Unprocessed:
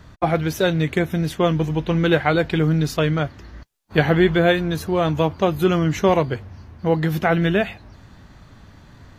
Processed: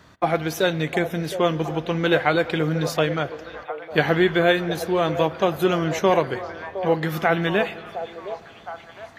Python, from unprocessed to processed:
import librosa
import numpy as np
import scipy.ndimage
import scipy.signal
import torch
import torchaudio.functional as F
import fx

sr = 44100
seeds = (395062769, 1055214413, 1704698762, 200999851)

p1 = fx.highpass(x, sr, hz=310.0, slope=6)
p2 = p1 + fx.echo_stepped(p1, sr, ms=713, hz=590.0, octaves=0.7, feedback_pct=70, wet_db=-8, dry=0)
y = fx.rev_spring(p2, sr, rt60_s=3.1, pass_ms=(57,), chirp_ms=65, drr_db=17.0)